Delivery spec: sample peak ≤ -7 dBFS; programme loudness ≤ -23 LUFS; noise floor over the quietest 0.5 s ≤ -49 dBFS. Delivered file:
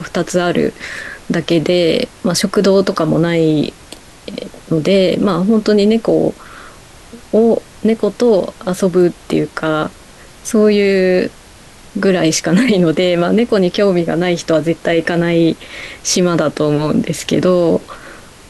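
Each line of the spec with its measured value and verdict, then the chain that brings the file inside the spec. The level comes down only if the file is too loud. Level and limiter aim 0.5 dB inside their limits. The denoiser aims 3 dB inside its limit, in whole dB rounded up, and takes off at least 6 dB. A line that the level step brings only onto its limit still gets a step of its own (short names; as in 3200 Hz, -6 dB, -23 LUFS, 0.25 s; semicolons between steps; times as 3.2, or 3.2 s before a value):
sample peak -3.0 dBFS: fail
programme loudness -14.5 LUFS: fail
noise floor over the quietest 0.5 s -39 dBFS: fail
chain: denoiser 6 dB, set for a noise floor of -39 dBFS; gain -9 dB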